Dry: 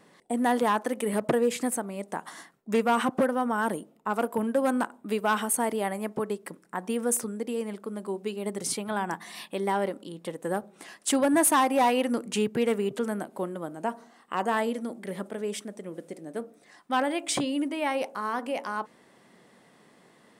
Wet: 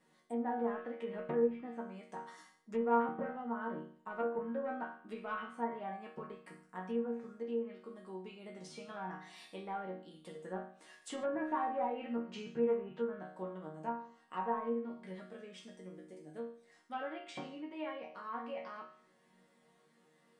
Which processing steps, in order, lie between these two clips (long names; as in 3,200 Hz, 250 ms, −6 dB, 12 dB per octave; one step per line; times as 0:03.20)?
treble cut that deepens with the level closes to 2,100 Hz, closed at −25 dBFS
resonators tuned to a chord D#3 minor, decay 0.53 s
treble cut that deepens with the level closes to 1,700 Hz, closed at −38.5 dBFS
level +6.5 dB